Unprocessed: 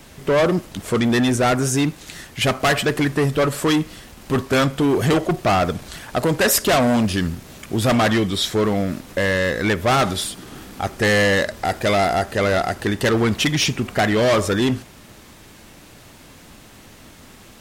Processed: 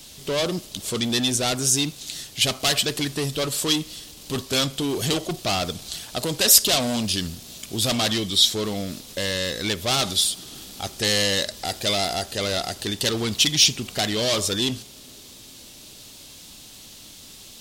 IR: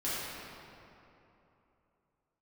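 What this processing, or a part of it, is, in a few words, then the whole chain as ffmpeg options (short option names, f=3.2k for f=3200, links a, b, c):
ducked reverb: -filter_complex "[0:a]asplit=3[a][b][c];[1:a]atrim=start_sample=2205[d];[b][d]afir=irnorm=-1:irlink=0[e];[c]apad=whole_len=776496[f];[e][f]sidechaincompress=threshold=-37dB:ratio=8:attack=16:release=1000,volume=-15dB[g];[a][g]amix=inputs=2:normalize=0,highshelf=f=2.6k:t=q:w=1.5:g=12,volume=-8dB"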